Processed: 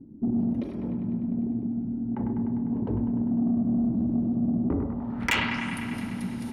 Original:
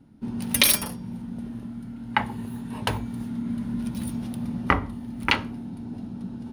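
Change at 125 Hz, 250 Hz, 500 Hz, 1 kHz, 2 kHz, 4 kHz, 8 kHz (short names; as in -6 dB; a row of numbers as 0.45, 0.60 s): +1.5 dB, +5.0 dB, 0.0 dB, -7.5 dB, -3.5 dB, n/a, under -15 dB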